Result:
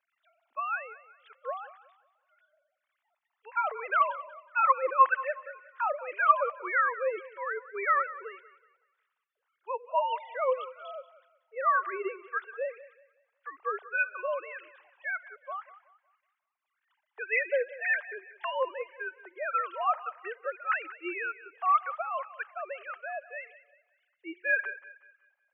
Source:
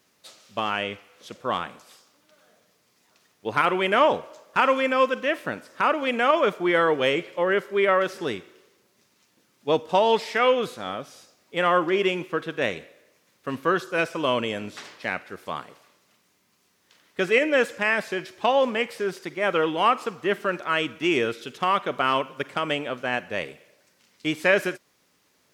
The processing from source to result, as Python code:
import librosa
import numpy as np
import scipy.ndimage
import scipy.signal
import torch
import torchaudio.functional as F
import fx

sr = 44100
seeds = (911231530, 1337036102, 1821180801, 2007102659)

p1 = fx.sine_speech(x, sr)
p2 = fx.tilt_shelf(p1, sr, db=-8.5, hz=1100.0)
p3 = fx.wah_lfo(p2, sr, hz=1.8, low_hz=600.0, high_hz=1500.0, q=2.2)
y = p3 + fx.echo_thinned(p3, sr, ms=185, feedback_pct=38, hz=440.0, wet_db=-16.0, dry=0)